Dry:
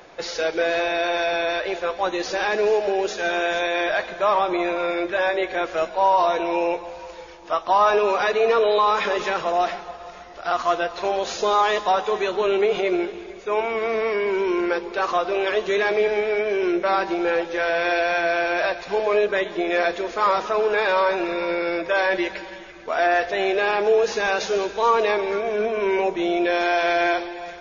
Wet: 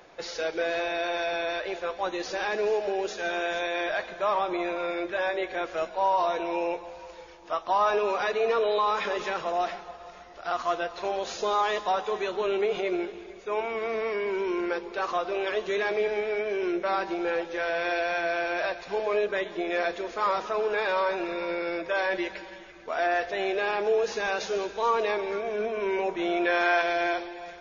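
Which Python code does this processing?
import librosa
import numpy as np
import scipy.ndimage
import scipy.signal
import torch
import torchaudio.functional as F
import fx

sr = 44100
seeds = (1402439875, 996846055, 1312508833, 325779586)

y = fx.dynamic_eq(x, sr, hz=1400.0, q=0.89, threshold_db=-37.0, ratio=4.0, max_db=8, at=(26.08, 26.82))
y = F.gain(torch.from_numpy(y), -6.5).numpy()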